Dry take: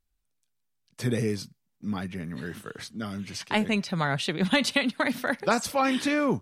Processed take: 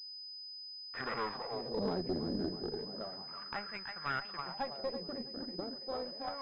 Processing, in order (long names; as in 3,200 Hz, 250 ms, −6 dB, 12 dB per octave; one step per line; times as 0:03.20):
source passing by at 0:01.52, 17 m/s, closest 3.7 metres
dynamic equaliser 990 Hz, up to +3 dB, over −50 dBFS, Q 0.99
leveller curve on the samples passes 3
echo with a time of its own for lows and highs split 390 Hz, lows 530 ms, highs 327 ms, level −7 dB
LFO wah 0.32 Hz 320–1,600 Hz, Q 3.4
tube saturation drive 36 dB, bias 0.7
switching amplifier with a slow clock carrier 5,000 Hz
level +10 dB